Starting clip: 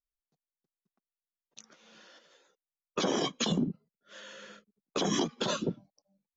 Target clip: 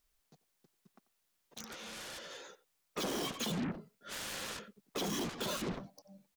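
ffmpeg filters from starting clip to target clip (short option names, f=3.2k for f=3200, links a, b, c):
-filter_complex "[0:a]asoftclip=type=tanh:threshold=-31.5dB,asplit=2[a][b];[b]adelay=90,highpass=300,lowpass=3.4k,asoftclip=type=hard:threshold=-39.5dB,volume=-17dB[c];[a][c]amix=inputs=2:normalize=0,alimiter=level_in=19dB:limit=-24dB:level=0:latency=1:release=11,volume=-19dB,aeval=exprs='0.0075*(cos(1*acos(clip(val(0)/0.0075,-1,1)))-cos(1*PI/2))+0.00266*(cos(3*acos(clip(val(0)/0.0075,-1,1)))-cos(3*PI/2))+0.00168*(cos(7*acos(clip(val(0)/0.0075,-1,1)))-cos(7*PI/2))':c=same,volume=12dB"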